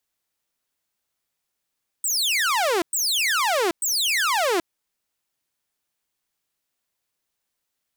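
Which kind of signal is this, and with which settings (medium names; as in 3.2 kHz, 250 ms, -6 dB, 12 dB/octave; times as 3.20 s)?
burst of laser zaps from 8.6 kHz, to 320 Hz, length 0.78 s saw, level -16.5 dB, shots 3, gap 0.11 s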